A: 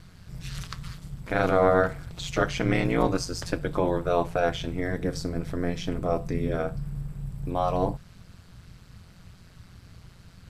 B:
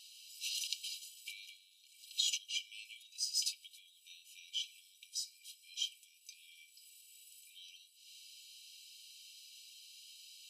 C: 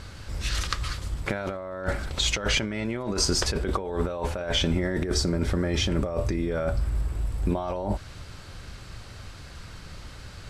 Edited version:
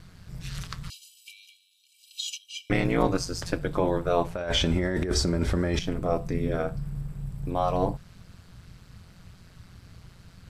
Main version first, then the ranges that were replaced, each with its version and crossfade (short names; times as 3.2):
A
0.9–2.7 from B
4.35–5.79 from C